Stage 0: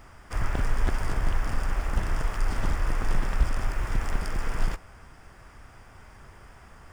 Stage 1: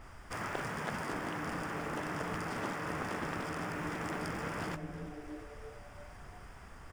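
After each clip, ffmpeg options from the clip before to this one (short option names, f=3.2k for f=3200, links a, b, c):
-filter_complex "[0:a]asplit=6[a][b][c][d][e][f];[b]adelay=340,afreqshift=140,volume=-18dB[g];[c]adelay=680,afreqshift=280,volume=-22.7dB[h];[d]adelay=1020,afreqshift=420,volume=-27.5dB[i];[e]adelay=1360,afreqshift=560,volume=-32.2dB[j];[f]adelay=1700,afreqshift=700,volume=-36.9dB[k];[a][g][h][i][j][k]amix=inputs=6:normalize=0,afftfilt=real='re*lt(hypot(re,im),0.158)':imag='im*lt(hypot(re,im),0.158)':win_size=1024:overlap=0.75,adynamicequalizer=threshold=0.002:dfrequency=3200:dqfactor=0.7:tfrequency=3200:tqfactor=0.7:attack=5:release=100:ratio=0.375:range=2:mode=cutabove:tftype=highshelf,volume=-2dB"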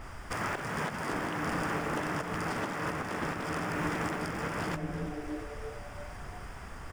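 -af "alimiter=level_in=5.5dB:limit=-24dB:level=0:latency=1:release=318,volume=-5.5dB,volume=7.5dB"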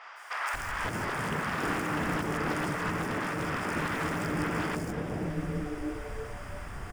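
-filter_complex "[0:a]aeval=exprs='0.0531*(abs(mod(val(0)/0.0531+3,4)-2)-1)':c=same,acrossover=split=700|5200[a][b][c];[c]adelay=160[d];[a]adelay=540[e];[e][b][d]amix=inputs=3:normalize=0,volume=3.5dB"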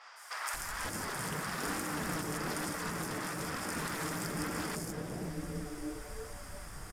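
-af "aexciter=amount=3.7:drive=4.5:freq=3.9k,flanger=delay=3.6:depth=2.9:regen=-46:speed=1.1:shape=sinusoidal,aresample=32000,aresample=44100,volume=-2.5dB"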